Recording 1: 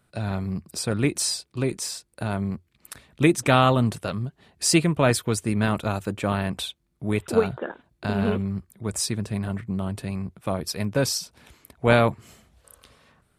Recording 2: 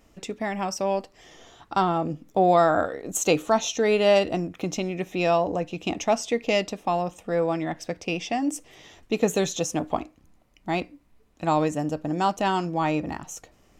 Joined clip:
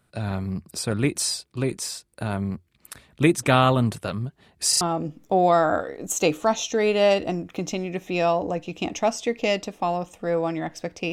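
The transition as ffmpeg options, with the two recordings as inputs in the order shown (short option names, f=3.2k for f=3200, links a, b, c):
-filter_complex "[0:a]apad=whole_dur=11.12,atrim=end=11.12,asplit=3[a][b][c];[a]atrim=end=4.732[d];[b]atrim=start=4.688:end=4.732[e];[c]atrim=start=4.688:end=4.732[f];[1:a]atrim=start=1.858:end=8.17[g];[d][e]acrossfade=d=0.004:c1=hsin:c2=hsin[h];[h][f]acrossfade=d=0.004:c1=hsin:c2=hsin[i];[i][g]acrossfade=d=0.004:c1=hsin:c2=hsin"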